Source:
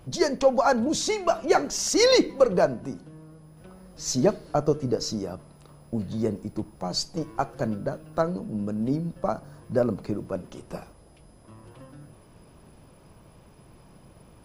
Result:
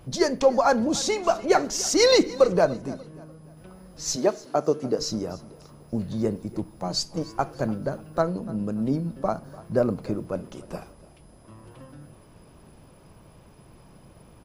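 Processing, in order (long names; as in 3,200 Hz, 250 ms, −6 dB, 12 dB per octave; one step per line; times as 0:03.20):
0:04.15–0:04.98: high-pass filter 380 Hz → 170 Hz 12 dB per octave
repeating echo 294 ms, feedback 38%, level −20 dB
level +1 dB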